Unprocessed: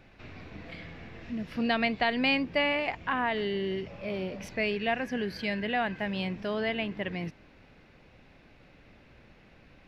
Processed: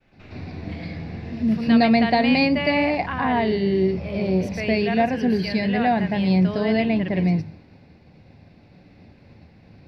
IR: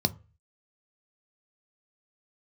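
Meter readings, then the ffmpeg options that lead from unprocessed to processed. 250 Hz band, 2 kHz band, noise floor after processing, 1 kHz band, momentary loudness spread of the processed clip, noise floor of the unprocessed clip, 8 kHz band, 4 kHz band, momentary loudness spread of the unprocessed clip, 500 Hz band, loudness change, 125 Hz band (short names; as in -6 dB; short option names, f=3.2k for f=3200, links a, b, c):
+13.5 dB, +4.0 dB, -52 dBFS, +9.0 dB, 15 LU, -57 dBFS, n/a, +4.0 dB, 17 LU, +9.0 dB, +9.5 dB, +15.0 dB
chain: -filter_complex "[0:a]agate=range=-33dB:threshold=-51dB:ratio=3:detection=peak,asplit=2[a][b];[1:a]atrim=start_sample=2205,adelay=111[c];[b][c]afir=irnorm=-1:irlink=0,volume=-4dB[d];[a][d]amix=inputs=2:normalize=0"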